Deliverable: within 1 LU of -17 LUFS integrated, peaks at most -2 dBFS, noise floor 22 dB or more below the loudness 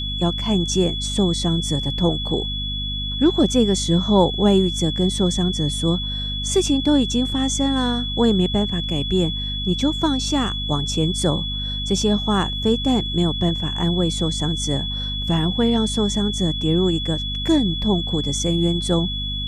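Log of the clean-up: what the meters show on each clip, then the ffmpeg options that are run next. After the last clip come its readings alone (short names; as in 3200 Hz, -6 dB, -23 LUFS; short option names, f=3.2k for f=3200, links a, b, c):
hum 50 Hz; harmonics up to 250 Hz; hum level -26 dBFS; steady tone 3400 Hz; tone level -26 dBFS; loudness -20.5 LUFS; peak -2.5 dBFS; loudness target -17.0 LUFS
-> -af "bandreject=f=50:t=h:w=6,bandreject=f=100:t=h:w=6,bandreject=f=150:t=h:w=6,bandreject=f=200:t=h:w=6,bandreject=f=250:t=h:w=6"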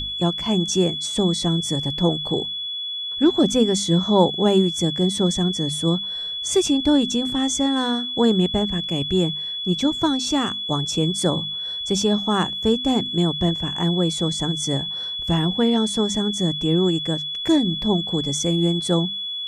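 hum none; steady tone 3400 Hz; tone level -26 dBFS
-> -af "bandreject=f=3.4k:w=30"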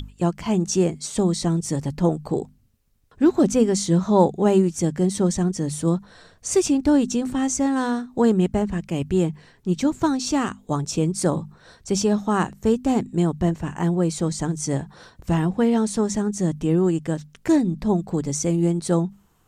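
steady tone none; loudness -22.0 LUFS; peak -3.5 dBFS; loudness target -17.0 LUFS
-> -af "volume=5dB,alimiter=limit=-2dB:level=0:latency=1"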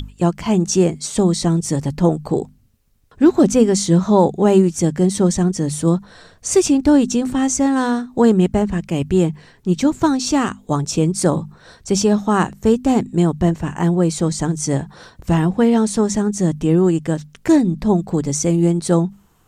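loudness -17.5 LUFS; peak -2.0 dBFS; noise floor -53 dBFS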